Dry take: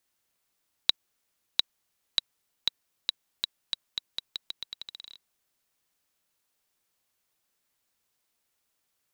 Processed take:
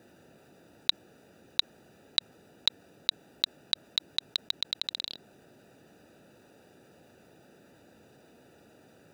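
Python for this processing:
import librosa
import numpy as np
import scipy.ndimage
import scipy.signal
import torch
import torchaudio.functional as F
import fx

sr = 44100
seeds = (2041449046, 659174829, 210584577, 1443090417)

y = fx.wiener(x, sr, points=41)
y = scipy.signal.sosfilt(scipy.signal.butter(2, 130.0, 'highpass', fs=sr, output='sos'), y)
y = fx.env_flatten(y, sr, amount_pct=50)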